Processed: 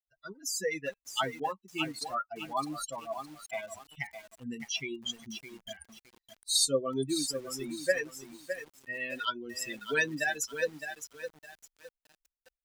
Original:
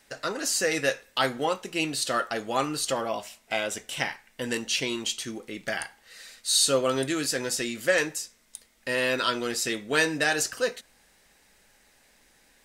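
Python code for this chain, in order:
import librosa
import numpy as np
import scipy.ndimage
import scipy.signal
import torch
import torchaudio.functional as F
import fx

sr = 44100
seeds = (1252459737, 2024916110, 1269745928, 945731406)

y = fx.bin_expand(x, sr, power=3.0)
y = fx.echo_crushed(y, sr, ms=611, feedback_pct=35, bits=8, wet_db=-8.5)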